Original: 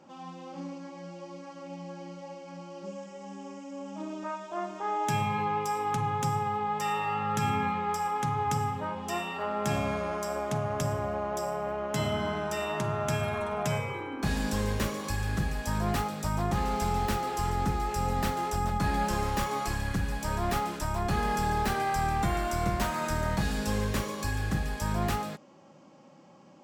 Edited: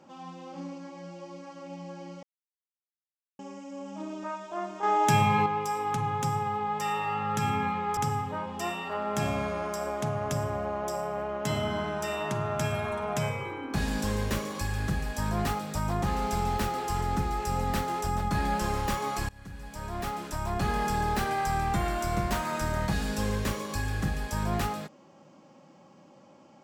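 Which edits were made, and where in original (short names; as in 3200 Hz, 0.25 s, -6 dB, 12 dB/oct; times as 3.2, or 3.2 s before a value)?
2.23–3.39 mute
4.83–5.46 gain +6 dB
7.97–8.46 cut
19.78–21.12 fade in, from -23 dB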